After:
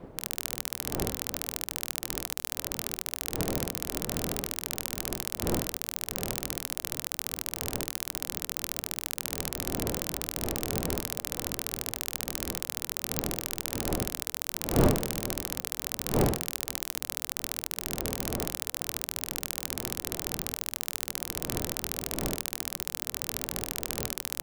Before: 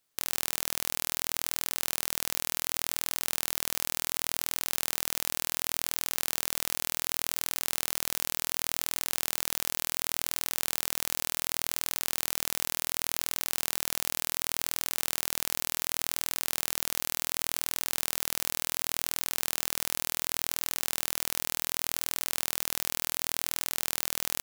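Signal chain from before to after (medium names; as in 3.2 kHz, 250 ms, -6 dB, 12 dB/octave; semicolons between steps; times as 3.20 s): wind noise 340 Hz -34 dBFS; ring modulator 170 Hz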